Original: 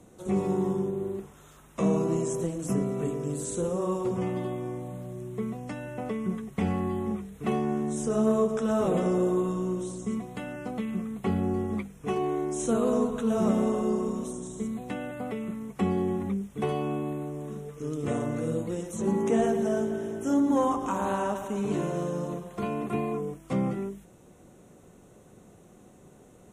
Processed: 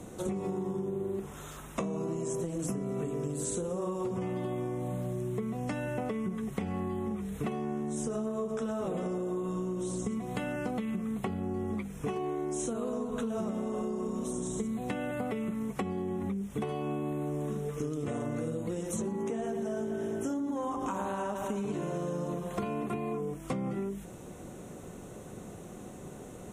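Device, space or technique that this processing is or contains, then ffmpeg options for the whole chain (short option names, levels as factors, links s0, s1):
serial compression, leveller first: -af "acompressor=threshold=0.0355:ratio=6,acompressor=threshold=0.0112:ratio=10,volume=2.66"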